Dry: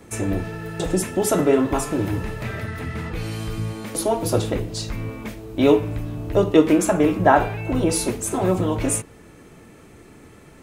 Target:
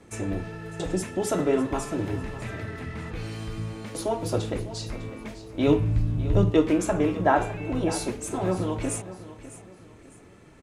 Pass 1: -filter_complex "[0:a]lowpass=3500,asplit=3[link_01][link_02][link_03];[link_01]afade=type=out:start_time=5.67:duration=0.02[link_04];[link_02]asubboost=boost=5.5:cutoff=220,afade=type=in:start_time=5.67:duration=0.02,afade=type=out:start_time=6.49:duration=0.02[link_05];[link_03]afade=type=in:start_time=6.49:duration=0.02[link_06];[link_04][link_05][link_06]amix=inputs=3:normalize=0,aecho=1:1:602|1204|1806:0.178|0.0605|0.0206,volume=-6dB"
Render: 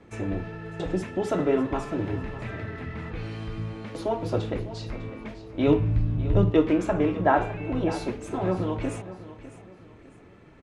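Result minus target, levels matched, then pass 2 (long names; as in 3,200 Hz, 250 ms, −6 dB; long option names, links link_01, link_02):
8,000 Hz band −13.0 dB
-filter_complex "[0:a]lowpass=8800,asplit=3[link_01][link_02][link_03];[link_01]afade=type=out:start_time=5.67:duration=0.02[link_04];[link_02]asubboost=boost=5.5:cutoff=220,afade=type=in:start_time=5.67:duration=0.02,afade=type=out:start_time=6.49:duration=0.02[link_05];[link_03]afade=type=in:start_time=6.49:duration=0.02[link_06];[link_04][link_05][link_06]amix=inputs=3:normalize=0,aecho=1:1:602|1204|1806:0.178|0.0605|0.0206,volume=-6dB"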